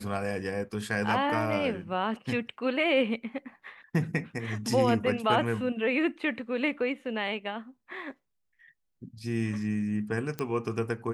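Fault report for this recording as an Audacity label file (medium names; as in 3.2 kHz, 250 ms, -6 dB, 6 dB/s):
10.390000	10.390000	pop -18 dBFS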